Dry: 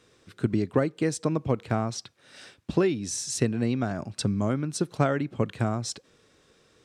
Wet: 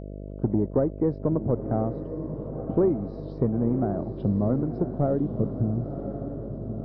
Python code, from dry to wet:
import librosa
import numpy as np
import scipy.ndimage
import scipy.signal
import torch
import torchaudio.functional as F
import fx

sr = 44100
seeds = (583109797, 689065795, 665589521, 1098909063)

p1 = fx.freq_compress(x, sr, knee_hz=1800.0, ratio=1.5)
p2 = fx.leveller(p1, sr, passes=2)
p3 = fx.env_phaser(p2, sr, low_hz=240.0, high_hz=3200.0, full_db=-21.5)
p4 = fx.filter_sweep_lowpass(p3, sr, from_hz=720.0, to_hz=250.0, start_s=4.9, end_s=5.8, q=1.1)
p5 = fx.dmg_buzz(p4, sr, base_hz=50.0, harmonics=13, level_db=-32.0, tilt_db=-4, odd_only=False)
p6 = p5 + fx.echo_diffused(p5, sr, ms=1033, feedback_pct=50, wet_db=-9, dry=0)
y = F.gain(torch.from_numpy(p6), -5.5).numpy()